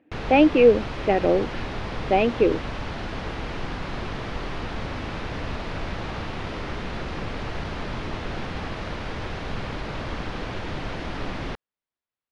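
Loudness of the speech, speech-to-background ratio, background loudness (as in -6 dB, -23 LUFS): -20.5 LUFS, 12.0 dB, -32.5 LUFS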